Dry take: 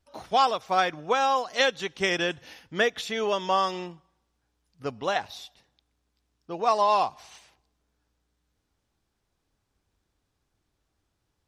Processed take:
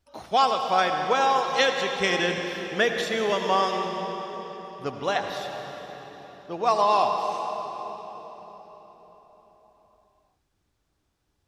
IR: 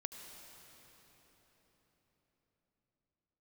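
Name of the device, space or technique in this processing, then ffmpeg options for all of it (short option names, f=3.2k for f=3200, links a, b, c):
cathedral: -filter_complex "[1:a]atrim=start_sample=2205[a];[0:a][a]afir=irnorm=-1:irlink=0,volume=4.5dB"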